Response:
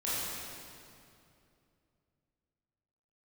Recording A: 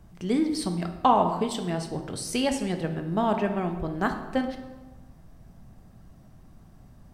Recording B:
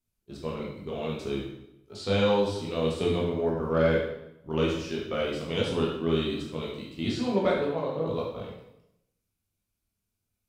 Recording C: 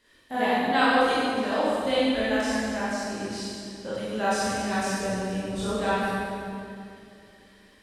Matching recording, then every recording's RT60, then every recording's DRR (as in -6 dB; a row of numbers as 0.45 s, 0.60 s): C; 1.1 s, 0.80 s, 2.6 s; 5.5 dB, -4.0 dB, -10.5 dB